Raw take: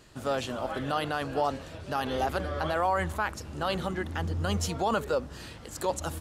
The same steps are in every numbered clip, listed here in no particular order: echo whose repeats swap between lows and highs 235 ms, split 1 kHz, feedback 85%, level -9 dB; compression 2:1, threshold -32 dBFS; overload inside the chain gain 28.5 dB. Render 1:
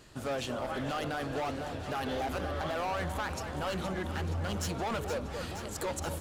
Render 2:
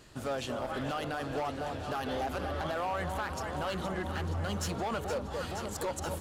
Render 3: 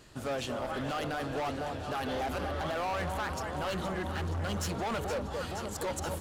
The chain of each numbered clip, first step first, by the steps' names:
overload inside the chain > echo whose repeats swap between lows and highs > compression; echo whose repeats swap between lows and highs > compression > overload inside the chain; echo whose repeats swap between lows and highs > overload inside the chain > compression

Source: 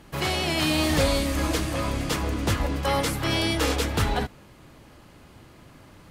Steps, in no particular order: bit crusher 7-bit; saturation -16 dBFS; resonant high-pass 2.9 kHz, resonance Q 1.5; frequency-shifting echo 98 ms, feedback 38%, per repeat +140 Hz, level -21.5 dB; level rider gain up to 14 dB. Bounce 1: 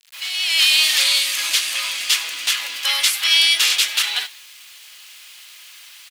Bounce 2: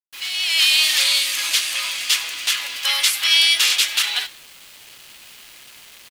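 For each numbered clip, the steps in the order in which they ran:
saturation > level rider > bit crusher > resonant high-pass > frequency-shifting echo; saturation > resonant high-pass > level rider > bit crusher > frequency-shifting echo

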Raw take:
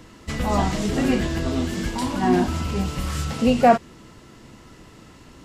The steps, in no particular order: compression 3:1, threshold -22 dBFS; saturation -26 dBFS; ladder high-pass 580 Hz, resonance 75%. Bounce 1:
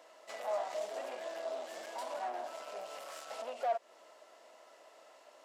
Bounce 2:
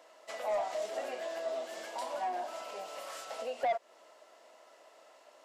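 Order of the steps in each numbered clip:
compression > saturation > ladder high-pass; compression > ladder high-pass > saturation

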